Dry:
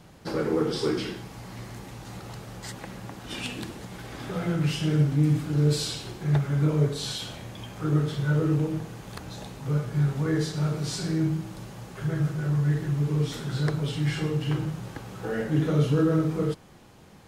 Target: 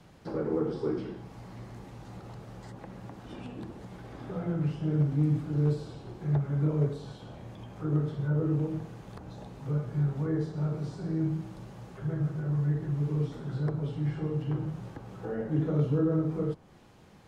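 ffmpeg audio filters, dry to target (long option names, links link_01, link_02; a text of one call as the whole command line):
ffmpeg -i in.wav -filter_complex "[0:a]highshelf=frequency=7800:gain=-8,acrossover=split=120|1200[link_01][link_02][link_03];[link_03]acompressor=threshold=-56dB:ratio=4[link_04];[link_01][link_02][link_04]amix=inputs=3:normalize=0,asoftclip=type=hard:threshold=-14dB,volume=-4dB" out.wav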